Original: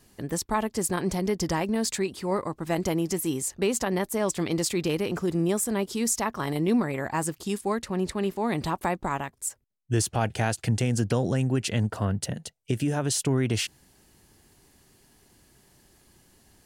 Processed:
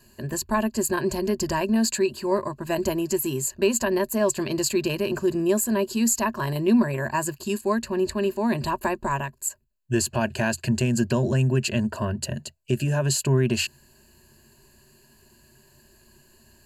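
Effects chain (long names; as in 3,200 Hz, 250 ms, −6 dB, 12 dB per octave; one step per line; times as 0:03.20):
EQ curve with evenly spaced ripples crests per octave 1.4, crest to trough 14 dB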